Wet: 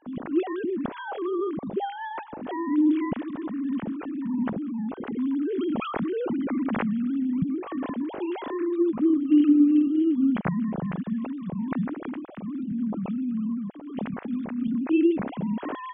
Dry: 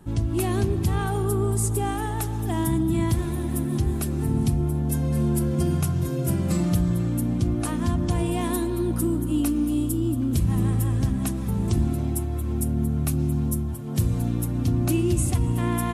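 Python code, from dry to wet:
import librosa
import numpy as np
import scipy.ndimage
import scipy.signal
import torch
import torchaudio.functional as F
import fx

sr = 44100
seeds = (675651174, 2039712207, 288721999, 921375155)

y = fx.sine_speech(x, sr)
y = fx.env_flatten(y, sr, amount_pct=70, at=(5.18, 7.39))
y = y * librosa.db_to_amplitude(-3.0)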